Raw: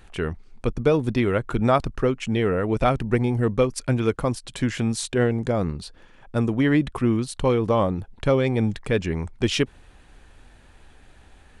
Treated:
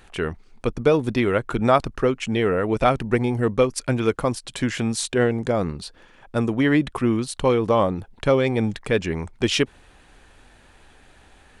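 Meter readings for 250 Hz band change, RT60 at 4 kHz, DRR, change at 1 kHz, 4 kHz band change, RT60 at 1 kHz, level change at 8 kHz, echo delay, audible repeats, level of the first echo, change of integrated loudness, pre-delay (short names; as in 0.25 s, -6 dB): +0.5 dB, none, none, +2.5 dB, +3.0 dB, none, +3.0 dB, none, none, none, +1.0 dB, none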